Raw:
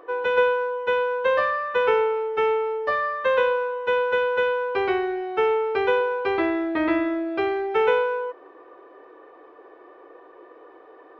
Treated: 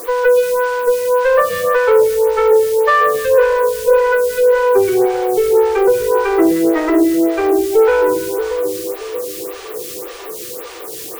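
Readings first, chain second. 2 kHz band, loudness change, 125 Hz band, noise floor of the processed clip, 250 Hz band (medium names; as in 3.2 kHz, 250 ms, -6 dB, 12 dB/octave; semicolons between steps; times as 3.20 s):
+4.5 dB, +9.0 dB, no reading, -30 dBFS, +11.0 dB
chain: spectral contrast enhancement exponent 1.8; in parallel at -1.5 dB: compression, threshold -28 dBFS, peak gain reduction 11.5 dB; on the sum: added noise white -40 dBFS; on a send: two-band feedback delay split 590 Hz, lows 629 ms, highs 176 ms, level -8.5 dB; on the sum: Chebyshev shaper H 5 -20 dB, 8 -26 dB, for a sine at -6.5 dBFS; lamp-driven phase shifter 1.8 Hz; trim +7 dB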